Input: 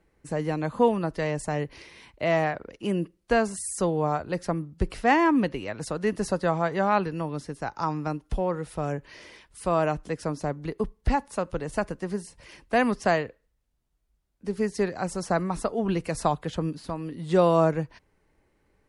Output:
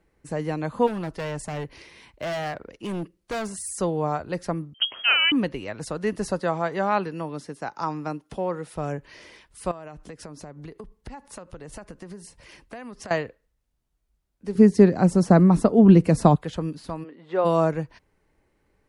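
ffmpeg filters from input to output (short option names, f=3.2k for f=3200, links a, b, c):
-filter_complex "[0:a]asplit=3[a][b][c];[a]afade=t=out:st=0.86:d=0.02[d];[b]volume=26.5dB,asoftclip=hard,volume=-26.5dB,afade=t=in:st=0.86:d=0.02,afade=t=out:st=3.77:d=0.02[e];[c]afade=t=in:st=3.77:d=0.02[f];[d][e][f]amix=inputs=3:normalize=0,asettb=1/sr,asplit=3[g][h][i];[g]atrim=end=4.744[j];[h]atrim=start=4.74:end=5.32,asetpts=PTS-STARTPTS,afade=t=in:d=0.004:c=qsin,afade=t=out:st=0.576:d=0.004:c=qsin,lowpass=f=2.8k:t=q:w=0.5098,lowpass=f=2.8k:t=q:w=0.6013,lowpass=f=2.8k:t=q:w=0.9,lowpass=f=2.8k:t=q:w=2.563,afreqshift=-3300[k];[i]atrim=start=5.316[l];[j][k]acrossfade=d=0.004:c1=hsin:c2=qsin[m];[m][l]acrossfade=d=0.004:c1=qsin:c2=hsin,asettb=1/sr,asplit=3[n][o][p];[n]atrim=end=6.414[q];[o]atrim=start=6.41:end=8.76,asetpts=PTS-STARTPTS,afade=t=in:d=0.004:c=qsin,afade=t=out:st=2.346:d=0.004:c=qsin,highpass=160[r];[p]atrim=start=8.756[s];[q][r]acrossfade=d=0.004:c1=hsin:c2=qsin[t];[t][s]acrossfade=d=0.004:c1=qsin:c2=hsin,asettb=1/sr,asplit=3[u][v][w];[u]atrim=end=9.714[x];[v]atrim=start=9.71:end=13.11,asetpts=PTS-STARTPTS,afade=t=in:d=0.004:c=qsin,afade=t=out:st=3.396:d=0.004:c=qsin,acompressor=threshold=-35dB:ratio=12:attack=3.2:release=140:knee=1:detection=peak[y];[w]atrim=start=13.106[z];[x][y]acrossfade=d=0.004:c1=hsin:c2=qsin[aa];[aa][z]acrossfade=d=0.004:c1=qsin:c2=hsin,asettb=1/sr,asplit=3[ab][ac][ad];[ab]atrim=end=14.554[ae];[ac]atrim=start=14.55:end=16.36,asetpts=PTS-STARTPTS,afade=t=in:d=0.004:c=qsin,afade=t=out:st=1.806:d=0.004:c=qsin,equalizer=f=200:w=0.46:g=15[af];[ad]atrim=start=16.356[ag];[ae][af]acrossfade=d=0.004:c1=hsin:c2=qsin[ah];[ah][ag]acrossfade=d=0.004:c1=qsin:c2=hsin,asplit=3[ai][aj][ak];[ai]afade=t=out:st=17.03:d=0.02[al];[aj]highpass=450,lowpass=2.1k,afade=t=in:st=17.03:d=0.02,afade=t=out:st=17.44:d=0.02[am];[ak]afade=t=in:st=17.44:d=0.02[an];[al][am][an]amix=inputs=3:normalize=0"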